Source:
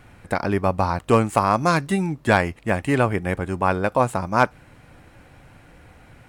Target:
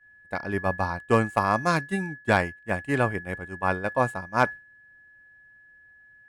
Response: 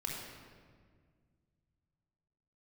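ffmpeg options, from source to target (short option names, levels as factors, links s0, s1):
-af "aeval=exprs='val(0)+0.0501*sin(2*PI*1700*n/s)':c=same,agate=range=0.0224:threshold=0.158:ratio=3:detection=peak,volume=0.631"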